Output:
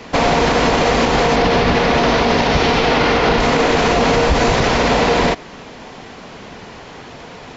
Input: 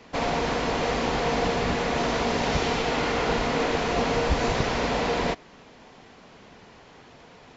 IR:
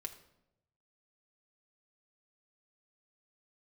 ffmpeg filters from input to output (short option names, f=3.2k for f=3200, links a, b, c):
-filter_complex "[0:a]asettb=1/sr,asplit=3[a][b][c];[a]atrim=end=1.364[d];[b]atrim=start=1.36:end=3.4,asetpts=PTS-STARTPTS,afade=t=in:d=0.004:c=qsin,afade=t=out:st=2.036:d=0.004:c=qsin,lowpass=f=5.8k:w=0.5412,lowpass=f=5.8k:w=1.3066[e];[c]atrim=start=3.396[f];[d][e]acrossfade=d=0.004:c1=hsin:c2=qsin[g];[g][f]acrossfade=d=0.004:c1=qsin:c2=hsin,alimiter=level_in=19dB:limit=-1dB:release=50:level=0:latency=1,volume=-4.5dB"